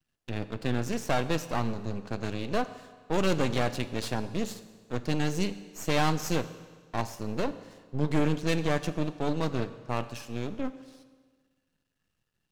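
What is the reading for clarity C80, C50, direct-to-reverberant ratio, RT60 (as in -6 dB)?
15.0 dB, 14.0 dB, 12.0 dB, 1.5 s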